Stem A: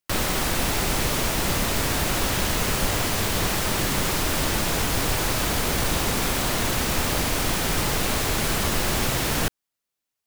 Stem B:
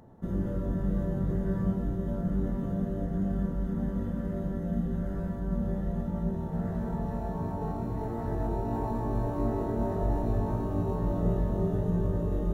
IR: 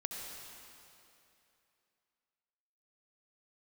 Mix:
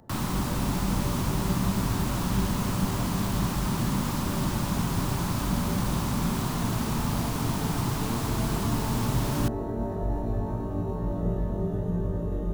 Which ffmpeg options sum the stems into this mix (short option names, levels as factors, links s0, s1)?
-filter_complex "[0:a]equalizer=f=125:t=o:w=1:g=12,equalizer=f=250:t=o:w=1:g=9,equalizer=f=500:t=o:w=1:g=-6,equalizer=f=1000:t=o:w=1:g=11,equalizer=f=2000:t=o:w=1:g=-3,volume=0.299[s0];[1:a]volume=0.944[s1];[s0][s1]amix=inputs=2:normalize=0,acrossover=split=400|3000[s2][s3][s4];[s3]acompressor=threshold=0.0178:ratio=2[s5];[s2][s5][s4]amix=inputs=3:normalize=0"